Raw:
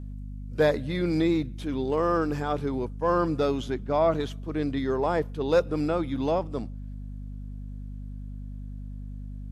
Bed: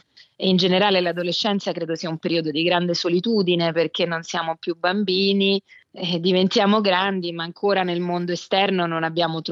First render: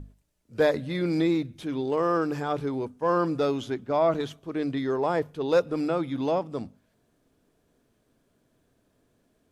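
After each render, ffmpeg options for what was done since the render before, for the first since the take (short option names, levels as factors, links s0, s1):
-af "bandreject=f=50:t=h:w=6,bandreject=f=100:t=h:w=6,bandreject=f=150:t=h:w=6,bandreject=f=200:t=h:w=6,bandreject=f=250:t=h:w=6"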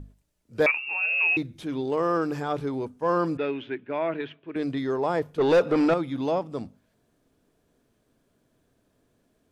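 -filter_complex "[0:a]asettb=1/sr,asplit=3[s0][s1][s2];[s0]atrim=end=0.664[s3];[s1]atrim=start=0.66:end=1.37,asetpts=PTS-STARTPTS,afade=t=in:d=0.004:c=qsin,afade=t=out:st=0.706:d=0.004:c=qsin,lowpass=f=2500:t=q:w=0.5098,lowpass=f=2500:t=q:w=0.6013,lowpass=f=2500:t=q:w=0.9,lowpass=f=2500:t=q:w=2.563,afreqshift=-2900[s4];[s2]atrim=start=1.366[s5];[s3][s4]acrossfade=d=0.004:c1=hsin:c2=qsin[s6];[s6][s5]acrossfade=d=0.004:c1=qsin:c2=hsin,asettb=1/sr,asplit=3[s7][s8][s9];[s7]atrim=end=3.374[s10];[s8]atrim=start=3.37:end=4.56,asetpts=PTS-STARTPTS,afade=t=in:d=0.004:c=qsin,afade=t=out:st=1.186:d=0.004:c=qsin,highpass=200,equalizer=f=210:t=q:w=4:g=-9,equalizer=f=520:t=q:w=4:g=-5,equalizer=f=740:t=q:w=4:g=-8,equalizer=f=1200:t=q:w=4:g=-8,equalizer=f=1700:t=q:w=4:g=6,equalizer=f=2500:t=q:w=4:g=8,lowpass=f=3000:w=0.5412,lowpass=f=3000:w=1.3066[s11];[s9]atrim=start=4.556[s12];[s10][s11]acrossfade=d=0.004:c1=hsin:c2=qsin[s13];[s13][s12]acrossfade=d=0.004:c1=qsin:c2=hsin,asettb=1/sr,asplit=3[s14][s15][s16];[s14]atrim=end=5.384[s17];[s15]atrim=start=5.38:end=5.94,asetpts=PTS-STARTPTS,afade=t=in:d=0.004:c=qsin,afade=t=out:st=0.556:d=0.004:c=qsin,asplit=2[s18][s19];[s19]highpass=f=720:p=1,volume=14.1,asoftclip=type=tanh:threshold=0.266[s20];[s18][s20]amix=inputs=2:normalize=0,lowpass=f=1600:p=1,volume=0.501[s21];[s16]atrim=start=5.936[s22];[s17][s21]acrossfade=d=0.004:c1=hsin:c2=qsin[s23];[s23][s22]acrossfade=d=0.004:c1=qsin:c2=hsin"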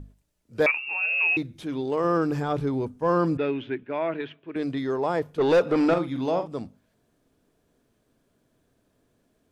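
-filter_complex "[0:a]asettb=1/sr,asplit=3[s0][s1][s2];[s0]atrim=end=2.044[s3];[s1]atrim=start=2.04:end=3.83,asetpts=PTS-STARTPTS,afade=t=in:d=0.004:c=qsin,afade=t=out:st=1.786:d=0.004:c=qsin,lowshelf=f=210:g=9[s4];[s2]atrim=start=3.826[s5];[s3][s4]acrossfade=d=0.004:c1=hsin:c2=qsin[s6];[s6][s5]acrossfade=d=0.004:c1=qsin:c2=hsin,asettb=1/sr,asplit=3[s7][s8][s9];[s7]atrim=end=5.844[s10];[s8]atrim=start=5.84:end=6.48,asetpts=PTS-STARTPTS,afade=t=in:d=0.004:c=qsin,afade=t=out:st=0.636:d=0.004:c=qsin,asplit=2[s11][s12];[s12]adelay=46,volume=0.355[s13];[s11][s13]amix=inputs=2:normalize=0,atrim=end_sample=28224[s14];[s9]atrim=start=6.476[s15];[s10][s14]acrossfade=d=0.004:c1=hsin:c2=qsin[s16];[s16][s15]acrossfade=d=0.004:c1=qsin:c2=hsin"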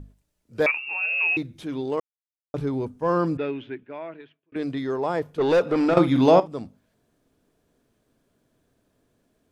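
-filter_complex "[0:a]asplit=6[s0][s1][s2][s3][s4][s5];[s0]atrim=end=2,asetpts=PTS-STARTPTS,afade=t=out:st=1.996:d=0.004:c=hsin[s6];[s1]atrim=start=2:end=2.54,asetpts=PTS-STARTPTS,volume=0[s7];[s2]atrim=start=2.54:end=4.52,asetpts=PTS-STARTPTS,afade=t=in:d=0.004:c=hsin,afade=t=out:st=0.66:d=1.32[s8];[s3]atrim=start=4.52:end=5.972,asetpts=PTS-STARTPTS,afade=t=in:d=0.004:c=hsin[s9];[s4]atrim=start=5.968:end=6.402,asetpts=PTS-STARTPTS,volume=3.16[s10];[s5]atrim=start=6.398[s11];[s6][s7][s8][s9]concat=n=4:v=0:a=1[s12];[s12][s10]acrossfade=d=0.004:c1=hsin:c2=hsin[s13];[s13][s11]acrossfade=d=0.004:c1=hsin:c2=hsin"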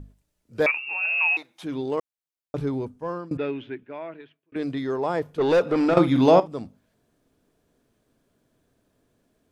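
-filter_complex "[0:a]asettb=1/sr,asplit=3[s0][s1][s2];[s0]atrim=end=1.054[s3];[s1]atrim=start=1.05:end=1.63,asetpts=PTS-STARTPTS,afade=t=in:d=0.004:c=qsin,afade=t=out:st=0.576:d=0.004:c=qsin,highpass=f=850:t=q:w=2.6[s4];[s2]atrim=start=1.626[s5];[s3][s4]acrossfade=d=0.004:c1=hsin:c2=qsin[s6];[s6][s5]acrossfade=d=0.004:c1=qsin:c2=hsin,asplit=2[s7][s8];[s7]atrim=end=3.31,asetpts=PTS-STARTPTS,afade=t=out:st=2.69:d=0.62:silence=0.0841395[s9];[s8]atrim=start=3.31,asetpts=PTS-STARTPTS,afade=t=in:d=0.004:c=hsin:silence=0.0841395[s10];[s9][s10]concat=n=2:v=0:a=1"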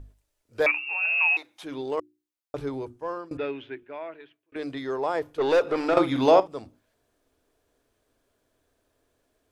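-af "equalizer=f=180:t=o:w=0.94:g=-15,bandreject=f=60:t=h:w=6,bandreject=f=120:t=h:w=6,bandreject=f=180:t=h:w=6,bandreject=f=240:t=h:w=6,bandreject=f=300:t=h:w=6,bandreject=f=360:t=h:w=6"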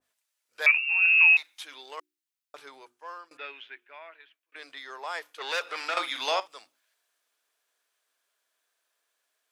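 -af "highpass=1300,adynamicequalizer=threshold=0.01:dfrequency=1700:dqfactor=0.7:tfrequency=1700:tqfactor=0.7:attack=5:release=100:ratio=0.375:range=3:mode=boostabove:tftype=highshelf"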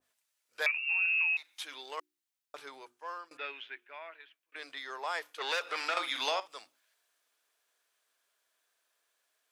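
-af "acompressor=threshold=0.0398:ratio=6"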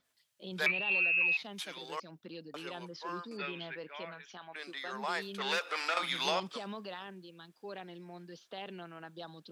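-filter_complex "[1:a]volume=0.0562[s0];[0:a][s0]amix=inputs=2:normalize=0"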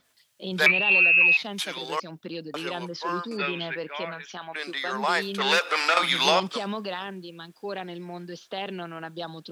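-af "volume=3.55"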